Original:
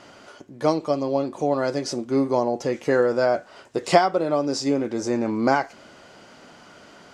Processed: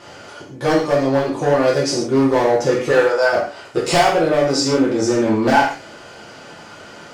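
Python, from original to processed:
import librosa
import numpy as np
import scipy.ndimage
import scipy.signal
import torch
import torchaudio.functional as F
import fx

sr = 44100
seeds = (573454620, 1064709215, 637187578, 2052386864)

y = fx.highpass(x, sr, hz=fx.line((2.9, 390.0), (3.32, 940.0)), slope=12, at=(2.9, 3.32), fade=0.02)
y = np.clip(10.0 ** (18.5 / 20.0) * y, -1.0, 1.0) / 10.0 ** (18.5 / 20.0)
y = fx.rev_gated(y, sr, seeds[0], gate_ms=180, shape='falling', drr_db=-5.5)
y = y * 10.0 ** (3.0 / 20.0)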